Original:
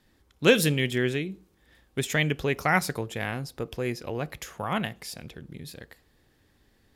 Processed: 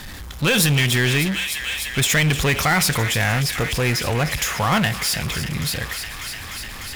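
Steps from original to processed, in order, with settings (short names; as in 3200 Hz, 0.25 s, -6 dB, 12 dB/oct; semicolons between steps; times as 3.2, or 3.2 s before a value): on a send: thin delay 0.299 s, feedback 76%, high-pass 2000 Hz, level -15 dB; on the sum: limiter -17 dBFS, peak gain reduction 10.5 dB; bell 360 Hz -10.5 dB 1.6 oct; power-law curve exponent 0.5; gain +7 dB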